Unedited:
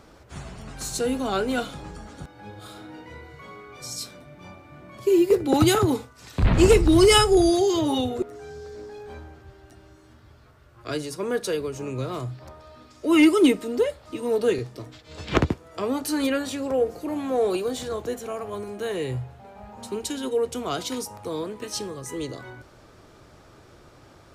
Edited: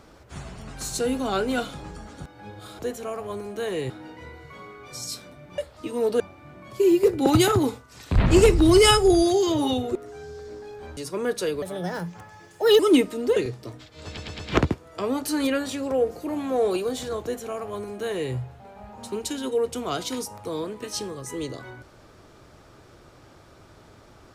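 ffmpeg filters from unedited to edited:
-filter_complex "[0:a]asplit=12[s0][s1][s2][s3][s4][s5][s6][s7][s8][s9][s10][s11];[s0]atrim=end=2.792[s12];[s1]atrim=start=18.018:end=19.132[s13];[s2]atrim=start=2.788:end=4.472[s14];[s3]atrim=start=13.868:end=14.492[s15];[s4]atrim=start=4.468:end=9.242[s16];[s5]atrim=start=11.028:end=11.684[s17];[s6]atrim=start=11.68:end=13.3,asetpts=PTS-STARTPTS,asetrate=60858,aresample=44100[s18];[s7]atrim=start=13.296:end=13.872[s19];[s8]atrim=start=14.488:end=15.302[s20];[s9]atrim=start=15.188:end=15.302[s21];[s10]atrim=start=15.188:end=15.302[s22];[s11]atrim=start=15.188[s23];[s12][s13]acrossfade=d=0.004:c1=hsin:c2=hsin[s24];[s24][s14]acrossfade=d=0.004:c1=hsin:c2=hsin[s25];[s25][s15]acrossfade=d=0.004:c1=hsin:c2=hsin[s26];[s26][s16]acrossfade=d=0.004:c1=hsin:c2=hsin[s27];[s27][s17]acrossfade=d=0.004:c1=hsin:c2=hsin[s28];[s28][s18]acrossfade=d=0.004:c1=hsin:c2=hsin[s29];[s29][s19]acrossfade=d=0.004:c1=hsin:c2=hsin[s30];[s30][s20]acrossfade=d=0.004:c1=hsin:c2=hsin[s31];[s31][s21]acrossfade=d=0.004:c1=hsin:c2=hsin[s32];[s32][s22]acrossfade=d=0.004:c1=hsin:c2=hsin[s33];[s33][s23]acrossfade=d=0.004:c1=hsin:c2=hsin"

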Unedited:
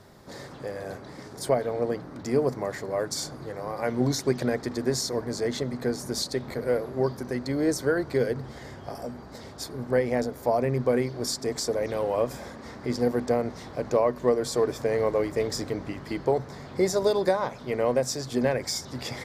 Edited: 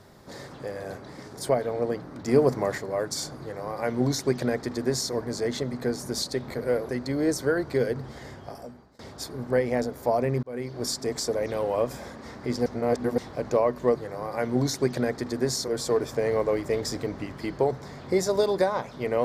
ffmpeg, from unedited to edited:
-filter_complex "[0:a]asplit=10[s0][s1][s2][s3][s4][s5][s6][s7][s8][s9];[s0]atrim=end=2.282[s10];[s1]atrim=start=2.278:end=2.782,asetpts=PTS-STARTPTS,volume=1.58[s11];[s2]atrim=start=2.778:end=6.892[s12];[s3]atrim=start=7.288:end=9.39,asetpts=PTS-STARTPTS,afade=t=out:st=1.402:d=0.7:silence=0.0668344[s13];[s4]atrim=start=9.39:end=10.83,asetpts=PTS-STARTPTS,afade=t=in:d=0.004:c=hsin:silence=0.0668344,afade=t=out:st=1.436:d=0.004:c=hsin[s14];[s5]atrim=start=10.83:end=13.062,asetpts=PTS-STARTPTS,afade=t=in:d=0.39[s15];[s6]atrim=start=13.058:end=13.582,asetpts=PTS-STARTPTS,areverse[s16];[s7]atrim=start=13.578:end=14.352[s17];[s8]atrim=start=3.398:end=5.132[s18];[s9]atrim=start=14.348[s19];[s10][s11]acrossfade=d=0.004:c1=hsin:c2=hsin[s20];[s20][s12]acrossfade=d=0.004:c1=hsin:c2=hsin[s21];[s13][s14][s15]concat=n=3:v=0:a=1[s22];[s21][s22]acrossfade=d=0.004:c1=hsin:c2=hsin[s23];[s23][s16]acrossfade=d=0.004:c1=hsin:c2=hsin[s24];[s24][s17]acrossfade=d=0.004:c1=hsin:c2=hsin[s25];[s25][s18]acrossfade=d=0.004:c1=hsin:c2=hsin[s26];[s26][s19]acrossfade=d=0.004:c1=hsin:c2=hsin"

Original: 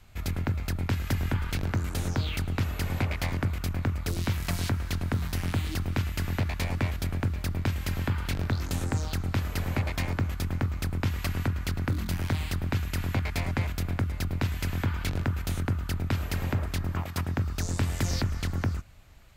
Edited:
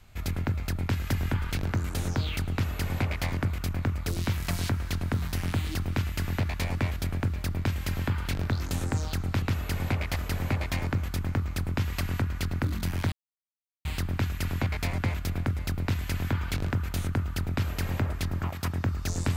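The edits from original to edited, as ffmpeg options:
-filter_complex "[0:a]asplit=4[s0][s1][s2][s3];[s0]atrim=end=9.422[s4];[s1]atrim=start=2.518:end=3.262[s5];[s2]atrim=start=9.418:end=12.38,asetpts=PTS-STARTPTS,afade=t=out:st=2.958:d=0.004:c=hsin,apad=pad_dur=0.73[s6];[s3]atrim=start=12.38,asetpts=PTS-STARTPTS,afade=t=in:d=0.004:c=hsin[s7];[s4][s5]acrossfade=d=0.004:c1=hsin:c2=hsin[s8];[s6][s7]concat=n=2:v=0:a=1[s9];[s8][s9]acrossfade=d=0.004:c1=hsin:c2=hsin"

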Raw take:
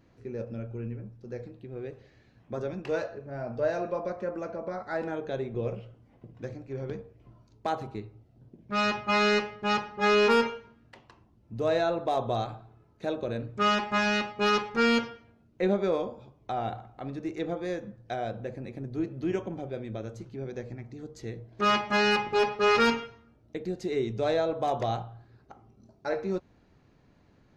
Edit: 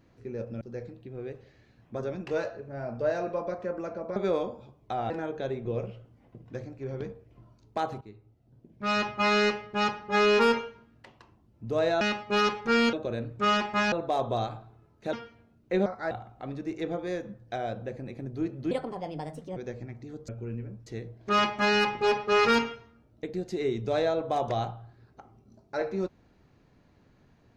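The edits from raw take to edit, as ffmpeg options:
-filter_complex "[0:a]asplit=15[s0][s1][s2][s3][s4][s5][s6][s7][s8][s9][s10][s11][s12][s13][s14];[s0]atrim=end=0.612[s15];[s1]atrim=start=1.188:end=4.742[s16];[s2]atrim=start=15.748:end=16.692[s17];[s3]atrim=start=4.988:end=7.9,asetpts=PTS-STARTPTS,afade=t=out:st=2.908:d=0.004:c=hsin:silence=0.237137[s18];[s4]atrim=start=7.9:end=11.902,asetpts=PTS-STARTPTS,afade=t=in:d=1.01:silence=0.237137[s19];[s5]atrim=start=14.098:end=15.022[s20];[s6]atrim=start=13.108:end=14.102[s21];[s7]atrim=start=11.898:end=13.112[s22];[s8]atrim=start=15.018:end=15.752[s23];[s9]atrim=start=4.738:end=4.992[s24];[s10]atrim=start=16.688:end=19.294[s25];[s11]atrim=start=19.29:end=20.46,asetpts=PTS-STARTPTS,asetrate=60417,aresample=44100,atrim=end_sample=37662,asetpts=PTS-STARTPTS[s26];[s12]atrim=start=20.456:end=21.182[s27];[s13]atrim=start=0.608:end=1.192[s28];[s14]atrim=start=21.178[s29];[s15][s16]acrossfade=d=0.004:c1=hsin:c2=hsin[s30];[s30][s17]acrossfade=d=0.004:c1=hsin:c2=hsin[s31];[s18][s19]concat=n=2:v=0:a=1[s32];[s31][s32]acrossfade=d=0.004:c1=hsin:c2=hsin[s33];[s33][s20]acrossfade=d=0.004:c1=hsin:c2=hsin[s34];[s34][s21]acrossfade=d=0.004:c1=hsin:c2=hsin[s35];[s35][s22]acrossfade=d=0.004:c1=hsin:c2=hsin[s36];[s36][s23]acrossfade=d=0.004:c1=hsin:c2=hsin[s37];[s37][s24]acrossfade=d=0.004:c1=hsin:c2=hsin[s38];[s38][s25]acrossfade=d=0.004:c1=hsin:c2=hsin[s39];[s39][s26]acrossfade=d=0.004:c1=hsin:c2=hsin[s40];[s40][s27]acrossfade=d=0.004:c1=hsin:c2=hsin[s41];[s41][s28]acrossfade=d=0.004:c1=hsin:c2=hsin[s42];[s42][s29]acrossfade=d=0.004:c1=hsin:c2=hsin"

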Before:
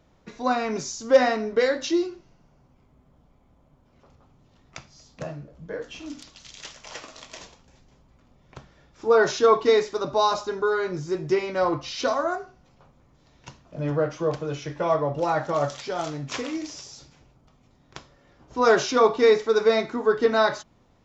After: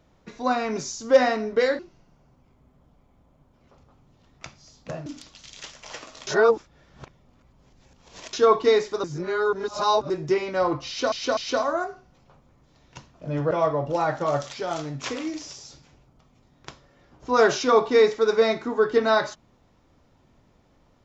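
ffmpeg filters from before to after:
-filter_complex "[0:a]asplit=10[s0][s1][s2][s3][s4][s5][s6][s7][s8][s9];[s0]atrim=end=1.792[s10];[s1]atrim=start=2.108:end=5.382[s11];[s2]atrim=start=6.068:end=7.282[s12];[s3]atrim=start=7.278:end=9.342,asetpts=PTS-STARTPTS,areverse[s13];[s4]atrim=start=9.338:end=10.052[s14];[s5]atrim=start=10.048:end=11.112,asetpts=PTS-STARTPTS,areverse[s15];[s6]atrim=start=11.108:end=12.132[s16];[s7]atrim=start=11.878:end=12.132[s17];[s8]atrim=start=11.878:end=14.022[s18];[s9]atrim=start=14.788[s19];[s10][s11]acrossfade=d=0.004:c1=hsin:c2=hsin[s20];[s20][s12]acrossfade=d=0.004:c1=hsin:c2=hsin[s21];[s21][s13]acrossfade=d=0.004:c1=hsin:c2=hsin[s22];[s22][s14]acrossfade=d=0.004:c1=hsin:c2=hsin[s23];[s23][s15]acrossfade=d=0.004:c1=hsin:c2=hsin[s24];[s24][s16]acrossfade=d=0.004:c1=hsin:c2=hsin[s25];[s25][s17]acrossfade=d=0.004:c1=hsin:c2=hsin[s26];[s26][s18]acrossfade=d=0.004:c1=hsin:c2=hsin[s27];[s27][s19]acrossfade=d=0.004:c1=hsin:c2=hsin"

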